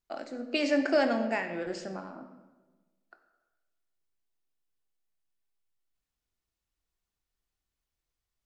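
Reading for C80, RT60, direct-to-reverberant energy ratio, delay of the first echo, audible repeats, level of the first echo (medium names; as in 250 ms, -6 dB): 10.5 dB, 1.2 s, 5.5 dB, no echo, no echo, no echo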